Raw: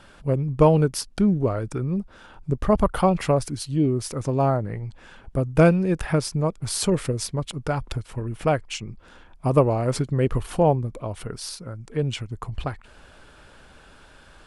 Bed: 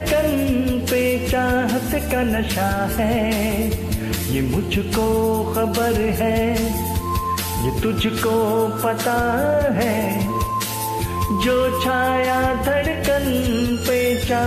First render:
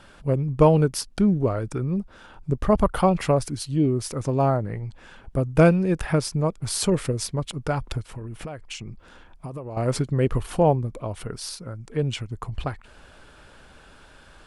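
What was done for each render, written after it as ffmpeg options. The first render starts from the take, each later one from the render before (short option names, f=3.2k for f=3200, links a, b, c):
-filter_complex "[0:a]asettb=1/sr,asplit=3[a][b][c];[a]atrim=end=8.054[d];[b]atrim=start=8.05:end=9.77,asetpts=PTS-STARTPTS,afade=t=in:d=0.004:c=qsin,afade=t=out:st=1.716:d=0.004:c=qsin,acompressor=threshold=-30dB:ratio=20:attack=3.2:release=140:knee=1:detection=peak[e];[c]atrim=start=9.766[f];[d][e]acrossfade=d=0.004:c1=hsin:c2=qsin[g];[g][f]acrossfade=d=0.004:c1=qsin:c2=hsin"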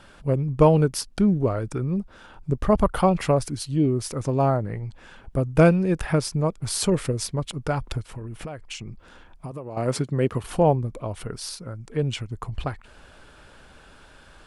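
-filter_complex "[0:a]asettb=1/sr,asplit=3[a][b][c];[a]atrim=end=9.514[d];[b]atrim=start=9.51:end=10.44,asetpts=PTS-STARTPTS,afade=t=in:d=0.004:c=qsin,afade=t=out:st=0.926:d=0.004:c=qsin,highpass=120[e];[c]atrim=start=10.436[f];[d][e]acrossfade=d=0.004:c1=hsin:c2=qsin[g];[g][f]acrossfade=d=0.004:c1=qsin:c2=hsin"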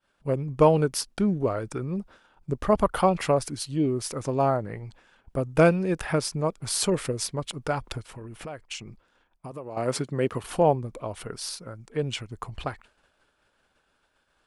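-af "agate=range=-33dB:threshold=-37dB:ratio=3:detection=peak,lowshelf=f=200:g=-9.5"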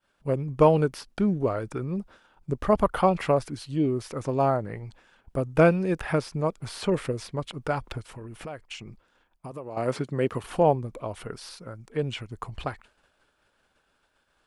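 -filter_complex "[0:a]acrossover=split=3400[a][b];[b]acompressor=threshold=-45dB:ratio=4:attack=1:release=60[c];[a][c]amix=inputs=2:normalize=0"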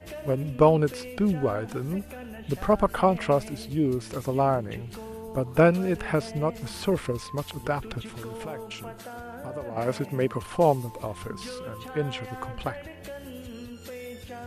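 -filter_complex "[1:a]volume=-21dB[a];[0:a][a]amix=inputs=2:normalize=0"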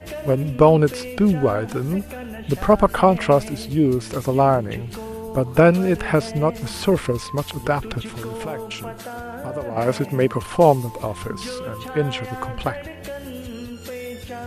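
-af "volume=7dB,alimiter=limit=-2dB:level=0:latency=1"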